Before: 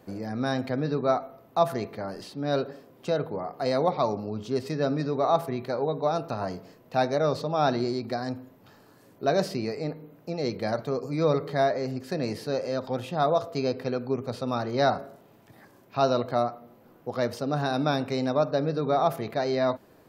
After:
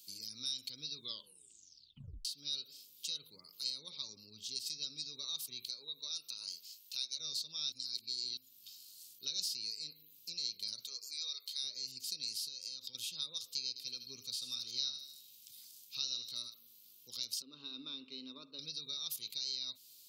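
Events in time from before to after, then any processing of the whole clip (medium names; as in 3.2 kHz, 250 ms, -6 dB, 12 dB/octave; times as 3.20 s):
0.94 s: tape stop 1.31 s
3.70–4.49 s: treble shelf 3.9 kHz -8.5 dB
5.68–7.18 s: high-pass 300 Hz -> 860 Hz 6 dB/octave
7.72–8.37 s: reverse
10.86–11.62 s: high-pass 510 Hz -> 1.2 kHz
12.48–12.95 s: compression, threshold -32 dBFS
13.68–16.54 s: feedback echo behind a high-pass 77 ms, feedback 45%, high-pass 2.2 kHz, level -10.5 dB
17.42–18.59 s: cabinet simulation 250–2600 Hz, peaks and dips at 260 Hz +9 dB, 370 Hz +6 dB, 620 Hz -3 dB, 1.1 kHz +4 dB, 1.6 kHz -5 dB, 2.3 kHz -9 dB
whole clip: inverse Chebyshev high-pass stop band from 1.9 kHz, stop band 40 dB; compression 2:1, threshold -54 dBFS; trim +12.5 dB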